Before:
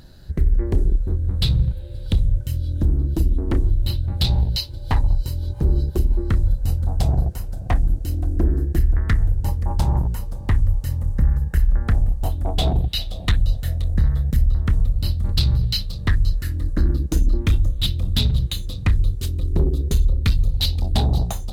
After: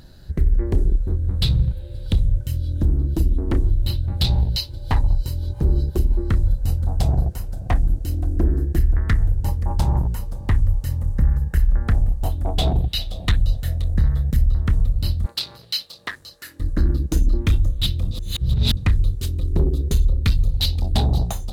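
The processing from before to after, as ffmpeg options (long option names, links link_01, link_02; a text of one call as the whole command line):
ffmpeg -i in.wav -filter_complex "[0:a]asettb=1/sr,asplit=3[link_01][link_02][link_03];[link_01]atrim=end=15.264[link_04];[link_02]atrim=start=15.26:end=16.6,asetpts=PTS-STARTPTS,afade=type=in:duration=0.004:curve=qsin,afade=type=out:start_time=1.336:duration=0.004:curve=qsin,highpass=560[link_05];[link_03]atrim=start=16.596[link_06];[link_04][link_05]acrossfade=duration=0.004:curve1=hsin:curve2=qsin[link_07];[link_07][link_06]acrossfade=duration=0.004:curve1=qsin:curve2=hsin,asplit=3[link_08][link_09][link_10];[link_08]atrim=end=18.112[link_11];[link_09]atrim=start=18.108:end=18.772,asetpts=PTS-STARTPTS,areverse[link_12];[link_10]atrim=start=18.768[link_13];[link_11][link_12]acrossfade=duration=0.004:curve1=hsin:curve2=hsin[link_14];[link_14][link_13]acrossfade=duration=0.004:curve1=hsin:curve2=hsin" out.wav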